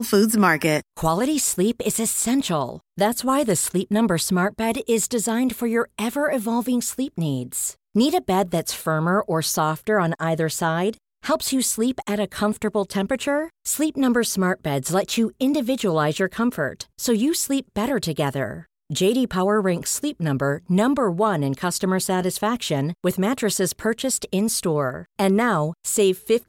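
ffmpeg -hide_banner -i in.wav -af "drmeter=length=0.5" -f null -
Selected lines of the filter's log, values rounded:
Channel 1: DR: 12.4
Overall DR: 12.4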